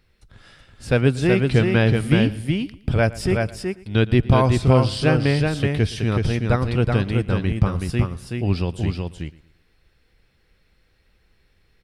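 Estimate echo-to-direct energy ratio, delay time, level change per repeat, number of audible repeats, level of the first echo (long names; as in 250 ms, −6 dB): −4.0 dB, 115 ms, repeats not evenly spaced, 5, −20.0 dB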